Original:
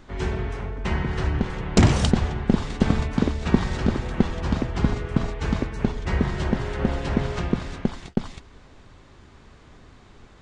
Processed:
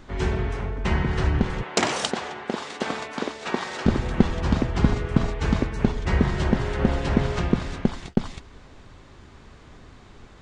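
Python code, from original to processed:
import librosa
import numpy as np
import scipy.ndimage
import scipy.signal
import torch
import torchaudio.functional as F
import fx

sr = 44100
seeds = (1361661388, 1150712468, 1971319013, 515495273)

y = fx.highpass(x, sr, hz=480.0, slope=12, at=(1.63, 3.86))
y = y * 10.0 ** (2.0 / 20.0)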